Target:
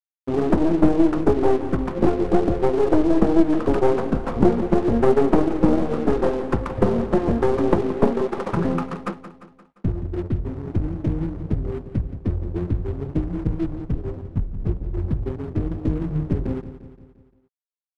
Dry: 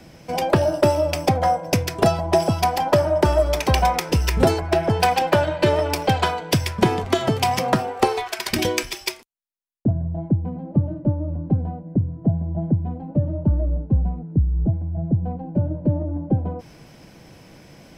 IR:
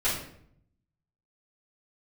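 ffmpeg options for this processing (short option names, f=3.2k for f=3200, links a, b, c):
-filter_complex "[0:a]highpass=f=140:p=1,agate=range=-33dB:threshold=-33dB:ratio=3:detection=peak,lowpass=f=2.4k:w=0.5412,lowpass=f=2.4k:w=1.3066,equalizer=f=680:t=o:w=1.9:g=5.5,bandreject=f=50:t=h:w=6,bandreject=f=100:t=h:w=6,bandreject=f=150:t=h:w=6,bandreject=f=200:t=h:w=6,bandreject=f=250:t=h:w=6,asplit=2[a][b];[b]acompressor=threshold=-27dB:ratio=20,volume=2dB[c];[a][c]amix=inputs=2:normalize=0,aeval=exprs='clip(val(0),-1,0.119)':c=same,flanger=delay=8.8:depth=2.9:regen=50:speed=1.5:shape=triangular,aeval=exprs='sgn(val(0))*max(abs(val(0))-0.0119,0)':c=same,asetrate=23361,aresample=44100,atempo=1.88775,aecho=1:1:174|348|522|696|870:0.224|0.119|0.0629|0.0333|0.0177,volume=3dB"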